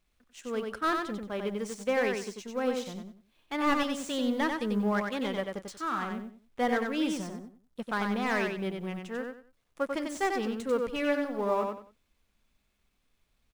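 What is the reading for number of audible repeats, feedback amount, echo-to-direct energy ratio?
3, 25%, -4.0 dB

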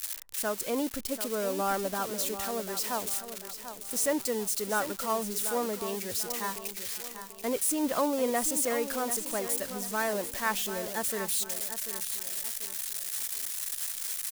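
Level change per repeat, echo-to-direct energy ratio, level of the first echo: -8.5 dB, -10.0 dB, -10.5 dB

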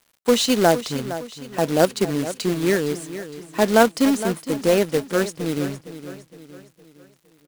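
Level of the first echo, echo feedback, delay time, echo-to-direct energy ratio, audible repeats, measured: -13.0 dB, 46%, 462 ms, -12.0 dB, 4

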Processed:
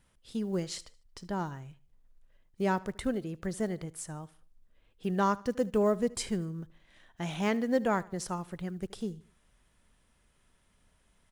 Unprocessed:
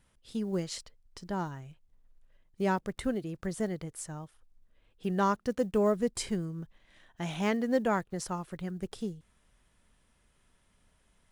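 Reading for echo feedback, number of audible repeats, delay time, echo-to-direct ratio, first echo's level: 39%, 2, 75 ms, -20.5 dB, -21.0 dB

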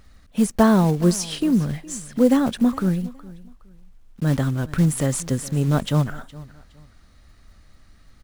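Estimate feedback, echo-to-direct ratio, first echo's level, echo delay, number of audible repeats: 27%, -19.5 dB, -20.0 dB, 415 ms, 2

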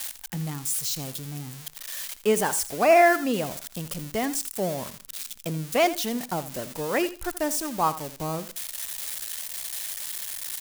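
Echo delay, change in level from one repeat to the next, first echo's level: 82 ms, -14.0 dB, -15.0 dB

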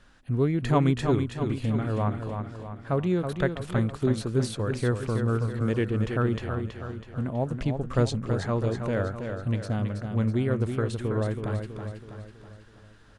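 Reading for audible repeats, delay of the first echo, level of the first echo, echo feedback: 5, 325 ms, -6.5 dB, 51%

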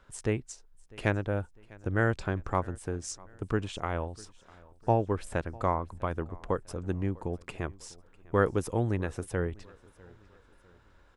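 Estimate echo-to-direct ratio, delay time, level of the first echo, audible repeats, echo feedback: -22.5 dB, 650 ms, -23.5 dB, 2, 41%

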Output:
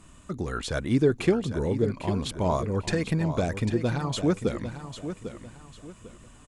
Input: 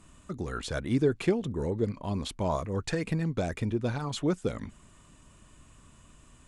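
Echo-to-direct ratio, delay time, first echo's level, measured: -10.0 dB, 798 ms, -10.5 dB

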